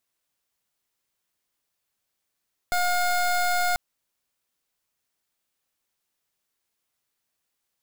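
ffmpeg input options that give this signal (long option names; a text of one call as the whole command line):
ffmpeg -f lavfi -i "aevalsrc='0.0708*(2*lt(mod(714*t,1),0.24)-1)':duration=1.04:sample_rate=44100" out.wav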